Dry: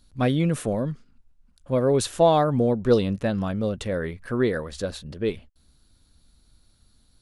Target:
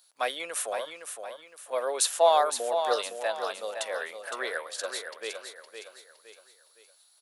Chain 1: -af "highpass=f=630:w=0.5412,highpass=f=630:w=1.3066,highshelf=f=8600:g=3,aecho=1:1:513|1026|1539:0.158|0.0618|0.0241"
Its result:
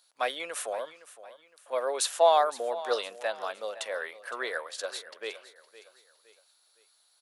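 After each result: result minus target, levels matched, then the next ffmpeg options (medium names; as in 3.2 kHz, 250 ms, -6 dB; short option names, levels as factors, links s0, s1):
echo-to-direct -8.5 dB; 8 kHz band -4.0 dB
-af "highpass=f=630:w=0.5412,highpass=f=630:w=1.3066,highshelf=f=8600:g=3,aecho=1:1:513|1026|1539|2052:0.422|0.164|0.0641|0.025"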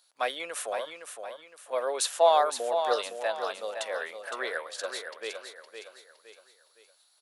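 8 kHz band -4.0 dB
-af "highpass=f=630:w=0.5412,highpass=f=630:w=1.3066,highshelf=f=8600:g=12,aecho=1:1:513|1026|1539|2052:0.422|0.164|0.0641|0.025"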